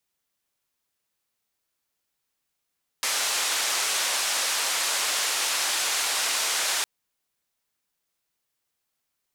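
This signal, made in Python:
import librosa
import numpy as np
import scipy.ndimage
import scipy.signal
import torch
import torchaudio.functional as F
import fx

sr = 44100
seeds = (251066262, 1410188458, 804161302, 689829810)

y = fx.band_noise(sr, seeds[0], length_s=3.81, low_hz=620.0, high_hz=8400.0, level_db=-26.0)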